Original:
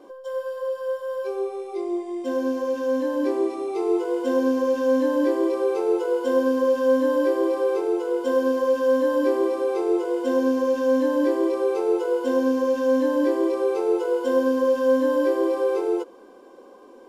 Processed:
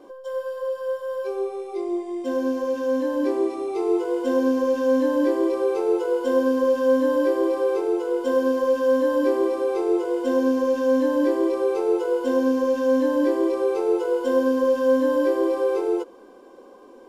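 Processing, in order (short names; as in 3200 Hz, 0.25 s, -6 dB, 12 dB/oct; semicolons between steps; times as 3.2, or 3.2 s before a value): low shelf 110 Hz +6 dB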